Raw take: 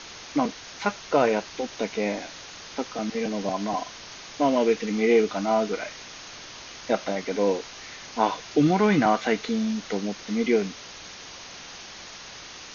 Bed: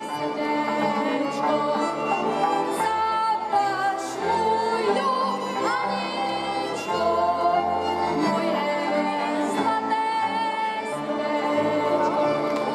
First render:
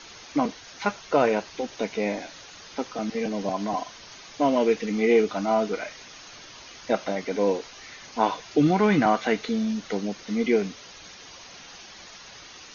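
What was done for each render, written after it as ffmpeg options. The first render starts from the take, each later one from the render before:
-af "afftdn=nr=7:nf=-43"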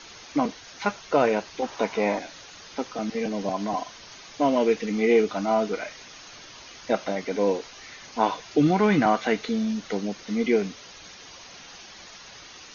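-filter_complex "[0:a]asettb=1/sr,asplit=3[s0][s1][s2];[s0]atrim=end=1.624[s3];[s1]atrim=start=1.62:end=2.19,asetpts=PTS-STARTPTS,afade=t=in:d=0.004:c=qsin,afade=t=out:st=0.566:d=0.004:c=qsin,equalizer=f=1000:w=1.2:g=11[s4];[s2]atrim=start=2.186[s5];[s3][s4]acrossfade=d=0.004:c1=hsin:c2=qsin[s6];[s6][s5]acrossfade=d=0.004:c1=qsin:c2=hsin"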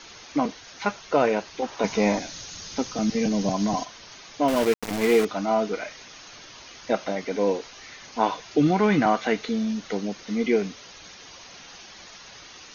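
-filter_complex "[0:a]asettb=1/sr,asplit=3[s0][s1][s2];[s0]atrim=end=1.844[s3];[s1]atrim=start=1.84:end=3.85,asetpts=PTS-STARTPTS,afade=t=in:d=0.004:c=qsin,afade=t=out:st=2.006:d=0.004:c=qsin,bass=f=250:g=11,treble=f=4000:g=11[s4];[s2]atrim=start=3.846[s5];[s3][s4]acrossfade=d=0.004:c1=hsin:c2=qsin[s6];[s6][s5]acrossfade=d=0.004:c1=qsin:c2=hsin,asettb=1/sr,asplit=3[s7][s8][s9];[s7]atrim=end=4.484[s10];[s8]atrim=start=4.48:end=5.25,asetpts=PTS-STARTPTS,afade=t=in:d=0.004:c=qsin,afade=t=out:st=0.766:d=0.004:c=qsin,aeval=exprs='val(0)*gte(abs(val(0)),0.0596)':c=same[s11];[s9]atrim=start=5.246[s12];[s10][s11]acrossfade=d=0.004:c1=hsin:c2=qsin[s13];[s13][s12]acrossfade=d=0.004:c1=qsin:c2=hsin"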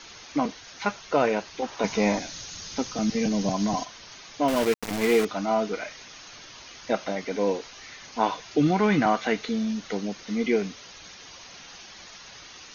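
-af "equalizer=f=440:w=0.57:g=-2"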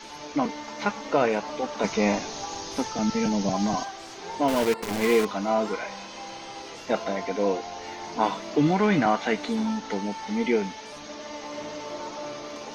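-filter_complex "[1:a]volume=0.2[s0];[0:a][s0]amix=inputs=2:normalize=0"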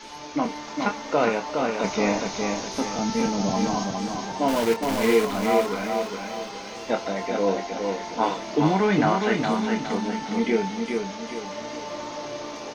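-filter_complex "[0:a]asplit=2[s0][s1];[s1]adelay=26,volume=0.376[s2];[s0][s2]amix=inputs=2:normalize=0,aecho=1:1:413|826|1239|1652|2065:0.596|0.244|0.1|0.0411|0.0168"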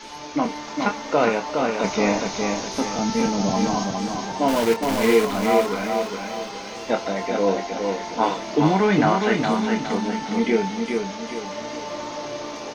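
-af "volume=1.33"

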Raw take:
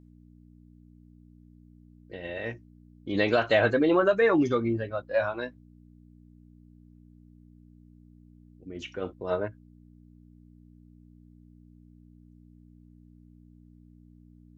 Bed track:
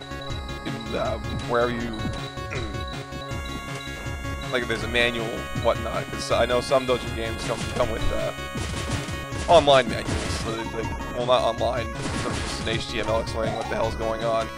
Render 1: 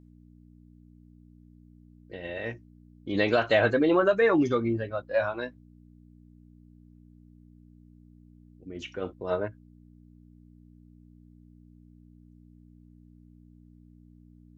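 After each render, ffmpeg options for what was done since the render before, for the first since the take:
-af anull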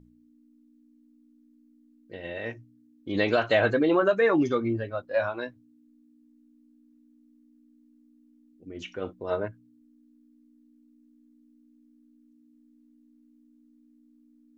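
-af "bandreject=f=60:t=h:w=4,bandreject=f=120:t=h:w=4,bandreject=f=180:t=h:w=4"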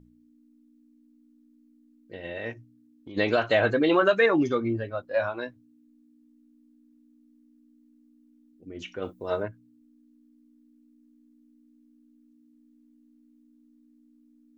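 -filter_complex "[0:a]asplit=3[s0][s1][s2];[s0]afade=t=out:st=2.53:d=0.02[s3];[s1]acompressor=threshold=0.01:ratio=4:attack=3.2:release=140:knee=1:detection=peak,afade=t=in:st=2.53:d=0.02,afade=t=out:st=3.16:d=0.02[s4];[s2]afade=t=in:st=3.16:d=0.02[s5];[s3][s4][s5]amix=inputs=3:normalize=0,asettb=1/sr,asplit=3[s6][s7][s8];[s6]atrim=end=3.834[s9];[s7]atrim=start=3.83:end=4.26,asetpts=PTS-STARTPTS,afade=t=in:d=0.004:c=qsin,afade=t=out:st=0.426:d=0.004:c=qsin,equalizer=f=3300:w=0.53:g=8.5[s10];[s8]atrim=start=4.256[s11];[s9][s10]acrossfade=d=0.004:c1=hsin:c2=qsin[s12];[s12][s11]acrossfade=d=0.004:c1=qsin:c2=hsin,asettb=1/sr,asplit=3[s13][s14][s15];[s13]atrim=end=9.024[s16];[s14]atrim=start=9.02:end=9.43,asetpts=PTS-STARTPTS,afade=t=in:d=0.004:c=qsin,afade=t=out:st=0.406:d=0.004:c=qsin,aemphasis=mode=production:type=50kf[s17];[s15]atrim=start=9.426[s18];[s16][s17]acrossfade=d=0.004:c1=hsin:c2=qsin[s19];[s19][s18]acrossfade=d=0.004:c1=qsin:c2=hsin"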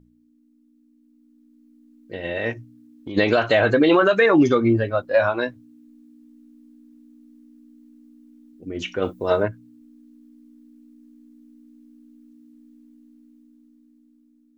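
-af "alimiter=limit=0.141:level=0:latency=1:release=109,dynaudnorm=f=510:g=7:m=3.16"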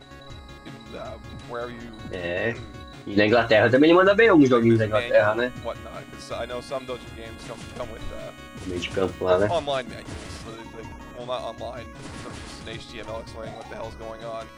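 -filter_complex "[1:a]volume=0.316[s0];[0:a][s0]amix=inputs=2:normalize=0"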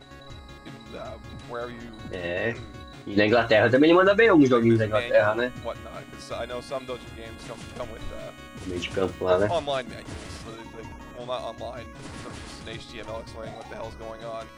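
-af "volume=0.841"

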